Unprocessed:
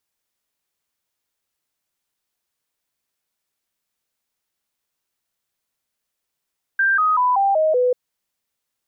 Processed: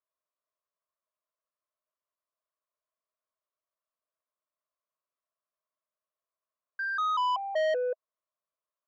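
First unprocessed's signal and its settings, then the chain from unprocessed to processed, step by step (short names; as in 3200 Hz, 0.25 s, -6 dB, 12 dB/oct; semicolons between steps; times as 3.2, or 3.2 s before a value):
stepped sine 1580 Hz down, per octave 3, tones 6, 0.19 s, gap 0.00 s -14 dBFS
double band-pass 820 Hz, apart 0.75 oct; soft clip -25 dBFS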